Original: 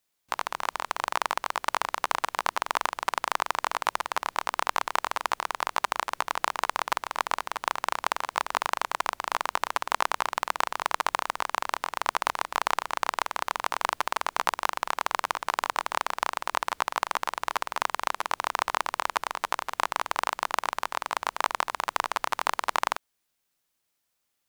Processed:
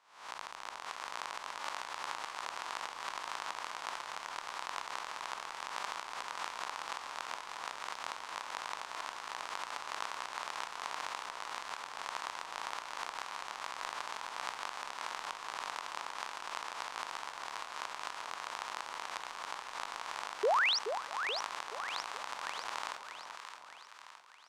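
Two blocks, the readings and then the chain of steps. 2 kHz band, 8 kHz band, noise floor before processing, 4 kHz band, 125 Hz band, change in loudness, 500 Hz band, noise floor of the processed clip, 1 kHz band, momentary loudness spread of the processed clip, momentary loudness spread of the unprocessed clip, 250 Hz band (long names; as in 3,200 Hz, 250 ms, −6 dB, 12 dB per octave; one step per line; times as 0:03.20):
−9.0 dB, −9.0 dB, −78 dBFS, −6.0 dB, can't be measured, −10.0 dB, −7.0 dB, −51 dBFS, −12.0 dB, 4 LU, 2 LU, −12.5 dB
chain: peak hold with a rise ahead of every peak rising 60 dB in 0.61 s
first-order pre-emphasis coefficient 0.8
sound drawn into the spectrogram rise, 0:20.43–0:20.79, 380–6,200 Hz −23 dBFS
high-frequency loss of the air 96 metres
on a send: echo with a time of its own for lows and highs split 990 Hz, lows 427 ms, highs 616 ms, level −7.5 dB
on the sum: level −4.5 dB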